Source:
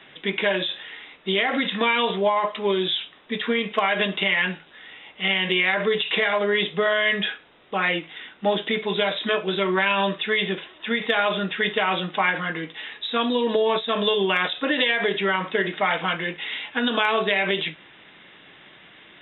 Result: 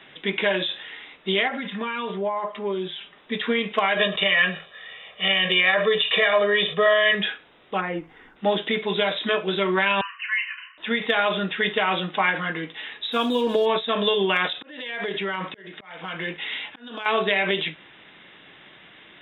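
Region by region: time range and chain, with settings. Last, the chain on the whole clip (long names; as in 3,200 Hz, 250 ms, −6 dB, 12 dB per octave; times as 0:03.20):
0:01.48–0:03.18: low-pass filter 2,400 Hz + comb filter 5 ms, depth 64% + downward compressor 1.5 to 1, threshold −38 dBFS
0:03.97–0:07.15: low-shelf EQ 130 Hz −8 dB + comb filter 1.7 ms, depth 84% + level that may fall only so fast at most 130 dB per second
0:07.80–0:08.35: low-pass filter 1,100 Hz + notch filter 610 Hz, Q 5.6 + background noise brown −62 dBFS
0:10.01–0:10.78: linear-phase brick-wall band-pass 1,000–3,100 Hz + notch filter 1,300 Hz, Q 13 + double-tracking delay 34 ms −9 dB
0:13.12–0:13.66: slack as between gear wheels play −38.5 dBFS + notch filter 1,900 Hz, Q 8.5
0:14.48–0:17.06: downward compressor 4 to 1, threshold −24 dBFS + volume swells 451 ms
whole clip: no processing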